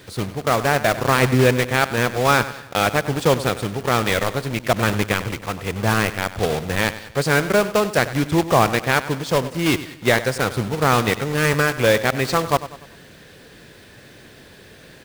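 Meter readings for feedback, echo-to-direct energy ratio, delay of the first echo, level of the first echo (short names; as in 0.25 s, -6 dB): 44%, -13.5 dB, 97 ms, -14.5 dB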